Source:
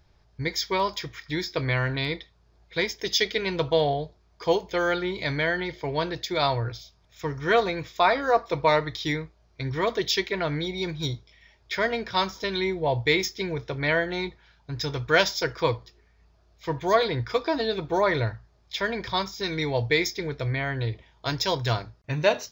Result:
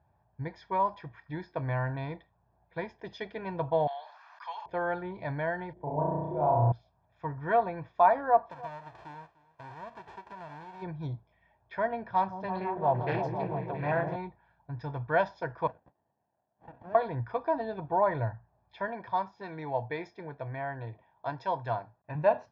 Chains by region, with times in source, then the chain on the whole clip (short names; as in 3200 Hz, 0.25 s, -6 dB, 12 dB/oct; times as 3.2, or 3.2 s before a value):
3.87–4.66 HPF 1200 Hz 24 dB/oct + high shelf 2000 Hz +6.5 dB + fast leveller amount 70%
5.73–6.72 EQ curve 410 Hz 0 dB, 940 Hz -6 dB, 1800 Hz -20 dB, 4800 Hz -28 dB + flutter echo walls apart 5.7 m, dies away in 1.3 s
8.5–10.81 spectral whitening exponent 0.1 + compressor 4:1, threshold -33 dBFS + echo 0.298 s -20.5 dB
12.08–14.16 repeats that get brighter 0.168 s, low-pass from 400 Hz, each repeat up 1 oct, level -3 dB + Doppler distortion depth 0.38 ms
15.67–16.95 HPF 740 Hz + compressor 2.5:1, threshold -33 dBFS + running maximum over 33 samples
18.88–22.15 HPF 270 Hz 6 dB/oct + high shelf 9300 Hz +4.5 dB
whole clip: Chebyshev band-pass 100–900 Hz, order 2; low shelf 440 Hz -8 dB; comb 1.2 ms, depth 56%